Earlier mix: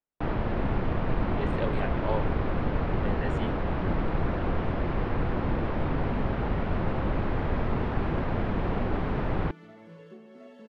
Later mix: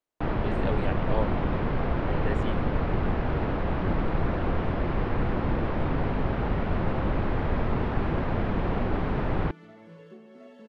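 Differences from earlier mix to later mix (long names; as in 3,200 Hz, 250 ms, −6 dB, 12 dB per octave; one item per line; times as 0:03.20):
speech: entry −0.95 s
reverb: on, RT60 1.8 s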